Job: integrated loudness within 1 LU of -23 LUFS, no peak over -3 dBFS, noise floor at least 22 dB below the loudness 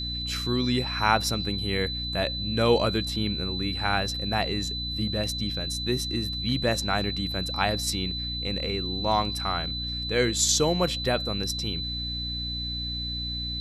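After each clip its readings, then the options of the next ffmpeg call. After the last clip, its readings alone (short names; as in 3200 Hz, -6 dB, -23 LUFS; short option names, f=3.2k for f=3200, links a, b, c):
hum 60 Hz; harmonics up to 300 Hz; hum level -33 dBFS; steady tone 4000 Hz; tone level -31 dBFS; loudness -26.5 LUFS; peak -6.0 dBFS; loudness target -23.0 LUFS
-> -af "bandreject=f=60:t=h:w=6,bandreject=f=120:t=h:w=6,bandreject=f=180:t=h:w=6,bandreject=f=240:t=h:w=6,bandreject=f=300:t=h:w=6"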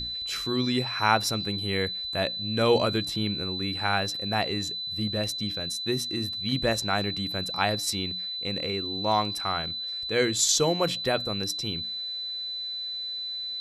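hum none; steady tone 4000 Hz; tone level -31 dBFS
-> -af "bandreject=f=4k:w=30"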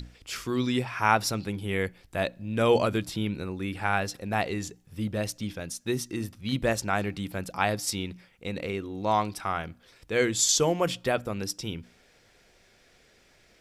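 steady tone none; loudness -28.5 LUFS; peak -6.5 dBFS; loudness target -23.0 LUFS
-> -af "volume=5.5dB,alimiter=limit=-3dB:level=0:latency=1"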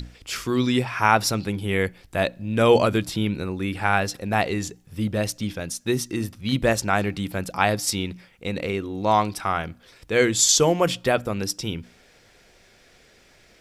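loudness -23.0 LUFS; peak -3.0 dBFS; noise floor -56 dBFS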